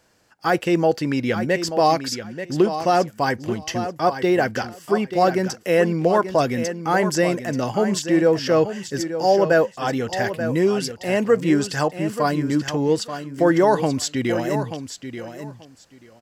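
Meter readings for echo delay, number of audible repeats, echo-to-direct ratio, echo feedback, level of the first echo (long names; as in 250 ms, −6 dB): 884 ms, 2, −10.0 dB, 17%, −10.0 dB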